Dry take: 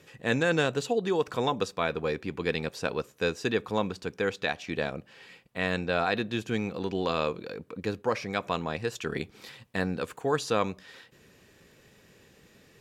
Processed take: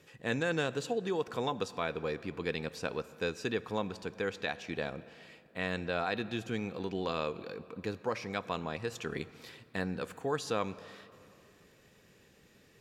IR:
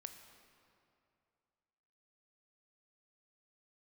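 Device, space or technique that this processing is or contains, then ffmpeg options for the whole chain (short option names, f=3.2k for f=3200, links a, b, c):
ducked reverb: -filter_complex "[0:a]asplit=3[a][b][c];[1:a]atrim=start_sample=2205[d];[b][d]afir=irnorm=-1:irlink=0[e];[c]apad=whole_len=564793[f];[e][f]sidechaincompress=threshold=-30dB:ratio=3:attack=32:release=167,volume=0.5dB[g];[a][g]amix=inputs=2:normalize=0,volume=-8.5dB"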